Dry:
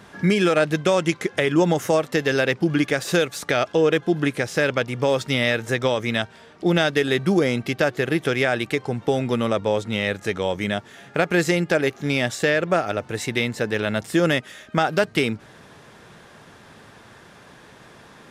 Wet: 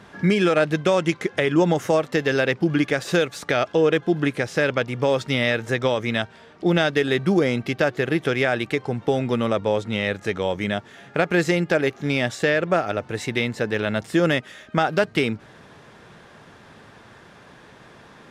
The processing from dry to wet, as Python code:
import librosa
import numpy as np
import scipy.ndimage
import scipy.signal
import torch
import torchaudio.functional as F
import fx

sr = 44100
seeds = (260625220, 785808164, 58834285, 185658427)

y = fx.high_shelf(x, sr, hz=7400.0, db=-9.5)